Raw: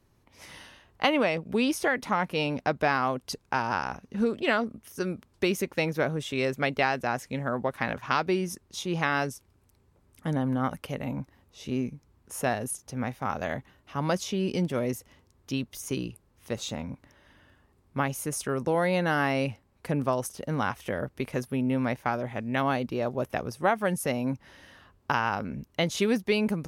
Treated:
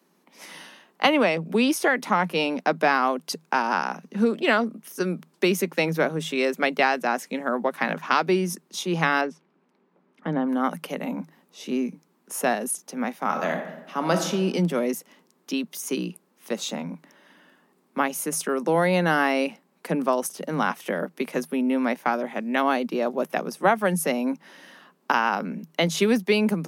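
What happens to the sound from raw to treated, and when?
9.21–10.49 LPF 2600 Hz
13.22–14.27 reverb throw, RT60 1 s, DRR 5.5 dB
whole clip: Chebyshev high-pass 160 Hz, order 10; high shelf 12000 Hz +5.5 dB; gain +5 dB

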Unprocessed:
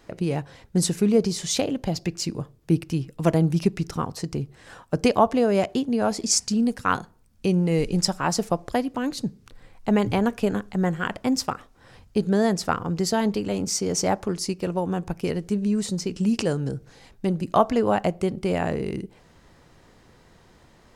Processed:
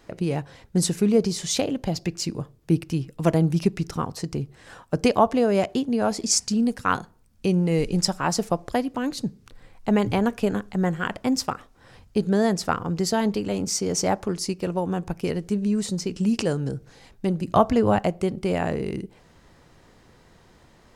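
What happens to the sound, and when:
17.47–17.99 bell 84 Hz +12 dB 1.7 oct

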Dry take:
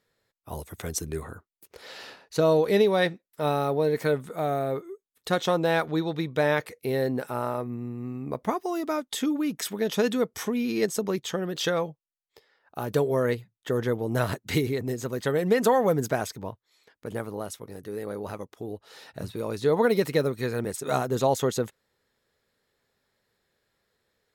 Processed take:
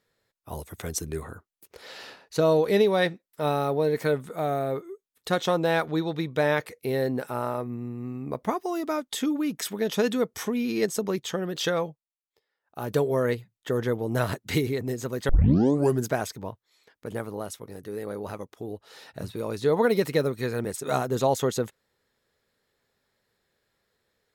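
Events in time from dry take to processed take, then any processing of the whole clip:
11.87–12.85 dip -15 dB, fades 0.18 s
15.29 tape start 0.76 s

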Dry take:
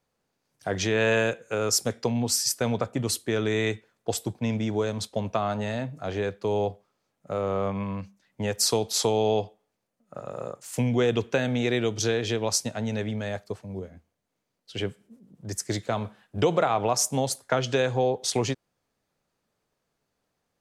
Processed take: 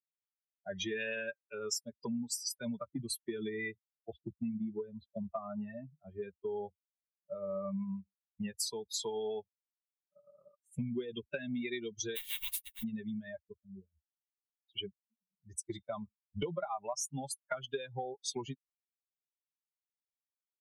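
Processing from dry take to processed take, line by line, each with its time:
3.49–6.22 air absorption 290 m
12.15–12.82 spectral contrast lowered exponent 0.13
whole clip: per-bin expansion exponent 3; comb 5 ms, depth 70%; compressor 6:1, threshold -38 dBFS; gain +3 dB

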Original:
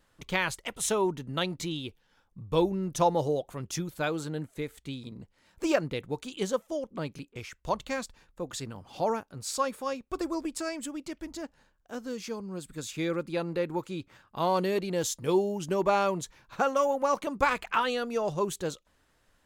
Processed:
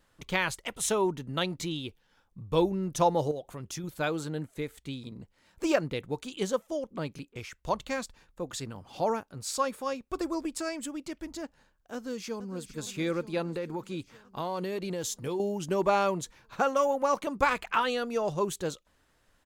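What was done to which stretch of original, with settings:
3.31–3.84 compressor 2.5:1, threshold -36 dBFS
11.94–12.77 echo throw 0.46 s, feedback 70%, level -13 dB
13.42–15.4 compressor, threshold -29 dBFS

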